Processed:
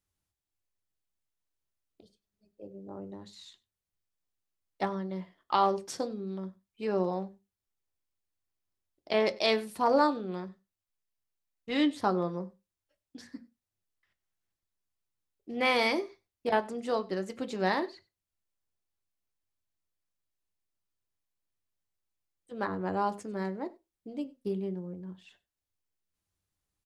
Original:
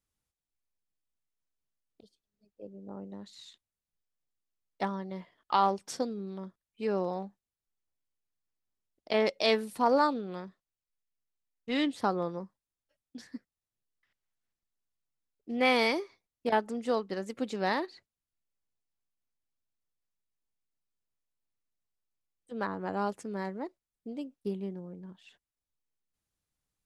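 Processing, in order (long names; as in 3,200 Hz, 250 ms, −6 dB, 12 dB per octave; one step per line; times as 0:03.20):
single-tap delay 97 ms −23.5 dB
on a send at −9 dB: convolution reverb, pre-delay 3 ms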